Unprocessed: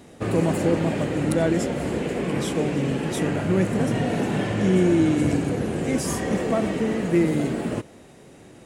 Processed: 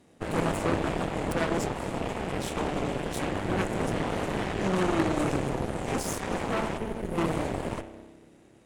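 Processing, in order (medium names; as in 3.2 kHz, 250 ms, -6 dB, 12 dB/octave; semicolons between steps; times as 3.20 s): time-frequency box 6.78–7.18 s, 260–8900 Hz -8 dB; spring tank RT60 2 s, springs 30 ms, chirp 70 ms, DRR 6.5 dB; Chebyshev shaper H 3 -15 dB, 8 -14 dB, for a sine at -6.5 dBFS; trim -6 dB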